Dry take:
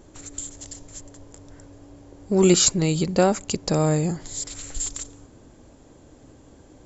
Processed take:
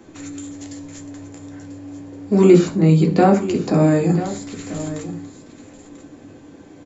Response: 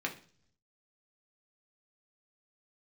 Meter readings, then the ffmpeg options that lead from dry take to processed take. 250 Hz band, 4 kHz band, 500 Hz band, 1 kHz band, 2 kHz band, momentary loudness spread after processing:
+7.5 dB, -8.5 dB, +5.5 dB, +6.5 dB, +3.5 dB, 23 LU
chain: -filter_complex "[0:a]acrossover=split=180|410|1600[a][b][c][d];[d]acompressor=threshold=-39dB:ratio=6[e];[a][b][c][e]amix=inputs=4:normalize=0,aecho=1:1:991:0.211[f];[1:a]atrim=start_sample=2205,atrim=end_sample=6174[g];[f][g]afir=irnorm=-1:irlink=0,volume=3.5dB"

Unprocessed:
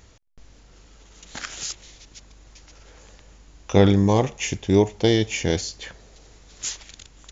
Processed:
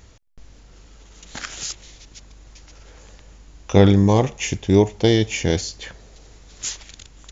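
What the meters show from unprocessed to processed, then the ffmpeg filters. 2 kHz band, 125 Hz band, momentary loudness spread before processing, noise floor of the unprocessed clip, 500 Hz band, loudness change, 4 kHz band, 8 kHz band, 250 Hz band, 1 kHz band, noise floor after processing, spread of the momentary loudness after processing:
+1.5 dB, +3.5 dB, 20 LU, -52 dBFS, +2.0 dB, +2.5 dB, +1.5 dB, n/a, +2.5 dB, +1.5 dB, -48 dBFS, 22 LU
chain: -af "lowshelf=f=190:g=3,volume=1.5dB"

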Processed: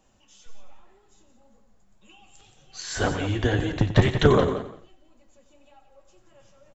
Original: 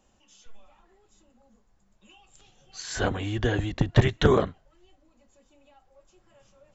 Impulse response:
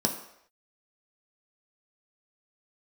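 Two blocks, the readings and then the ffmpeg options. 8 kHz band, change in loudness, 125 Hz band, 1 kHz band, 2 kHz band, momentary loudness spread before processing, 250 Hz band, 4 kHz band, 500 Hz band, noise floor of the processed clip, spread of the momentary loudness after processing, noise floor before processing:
n/a, +2.5 dB, +2.0 dB, +2.5 dB, +2.5 dB, 14 LU, +3.0 dB, +2.5 dB, +2.5 dB, -60 dBFS, 14 LU, -66 dBFS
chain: -filter_complex "[0:a]asplit=2[a][b];[b]aecho=0:1:175|350:0.316|0.0538[c];[a][c]amix=inputs=2:normalize=0,flanger=delay=6.2:depth=5.7:regen=58:speed=1.9:shape=sinusoidal,asplit=2[d][e];[e]aecho=0:1:91:0.266[f];[d][f]amix=inputs=2:normalize=0,volume=6dB"

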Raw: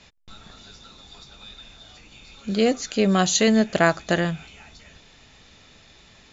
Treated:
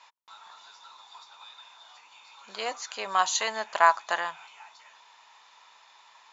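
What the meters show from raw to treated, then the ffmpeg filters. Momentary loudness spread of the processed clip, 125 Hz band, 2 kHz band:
13 LU, under -30 dB, -3.0 dB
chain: -af "highpass=f=960:t=q:w=8.6,volume=-6.5dB"

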